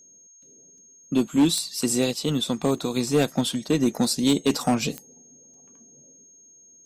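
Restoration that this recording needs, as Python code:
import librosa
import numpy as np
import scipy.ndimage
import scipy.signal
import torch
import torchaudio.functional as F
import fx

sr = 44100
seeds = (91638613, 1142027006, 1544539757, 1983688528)

y = fx.fix_declip(x, sr, threshold_db=-13.0)
y = fx.fix_declick_ar(y, sr, threshold=10.0)
y = fx.notch(y, sr, hz=6500.0, q=30.0)
y = fx.fix_interpolate(y, sr, at_s=(0.78, 2.78, 5.54), length_ms=1.8)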